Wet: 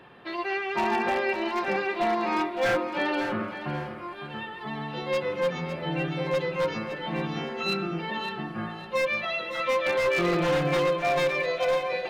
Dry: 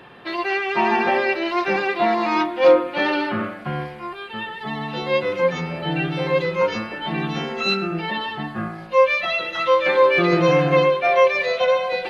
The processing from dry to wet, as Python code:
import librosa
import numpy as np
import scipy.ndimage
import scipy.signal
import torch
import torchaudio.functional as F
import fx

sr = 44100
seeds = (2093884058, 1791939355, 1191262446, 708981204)

y = fx.high_shelf(x, sr, hz=2400.0, db=-3.0)
y = 10.0 ** (-12.5 / 20.0) * (np.abs((y / 10.0 ** (-12.5 / 20.0) + 3.0) % 4.0 - 2.0) - 1.0)
y = fx.echo_feedback(y, sr, ms=557, feedback_pct=29, wet_db=-10.5)
y = F.gain(torch.from_numpy(y), -6.0).numpy()